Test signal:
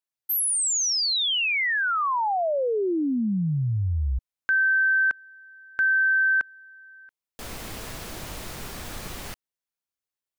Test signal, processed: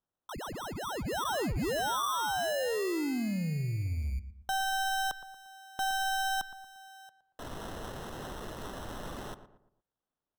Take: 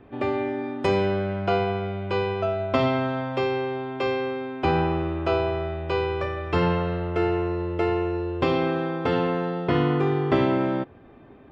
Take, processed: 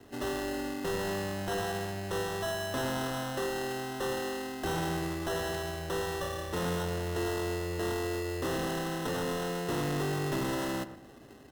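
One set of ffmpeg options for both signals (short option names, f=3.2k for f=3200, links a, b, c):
-filter_complex "[0:a]acrossover=split=3600[a][b];[b]acompressor=threshold=-39dB:ratio=4:attack=1:release=60[c];[a][c]amix=inputs=2:normalize=0,lowshelf=f=230:g=-3.5,acrossover=split=120|720|1100[d][e][f][g];[f]alimiter=level_in=6.5dB:limit=-24dB:level=0:latency=1,volume=-6.5dB[h];[d][e][h][g]amix=inputs=4:normalize=0,acrusher=samples=19:mix=1:aa=0.000001,asoftclip=type=tanh:threshold=-26.5dB,asplit=2[i][j];[j]adelay=116,lowpass=f=1.6k:p=1,volume=-11.5dB,asplit=2[k][l];[l]adelay=116,lowpass=f=1.6k:p=1,volume=0.4,asplit=2[m][n];[n]adelay=116,lowpass=f=1.6k:p=1,volume=0.4,asplit=2[o][p];[p]adelay=116,lowpass=f=1.6k:p=1,volume=0.4[q];[i][k][m][o][q]amix=inputs=5:normalize=0,volume=-2.5dB" -ar 48000 -c:a aac -b:a 160k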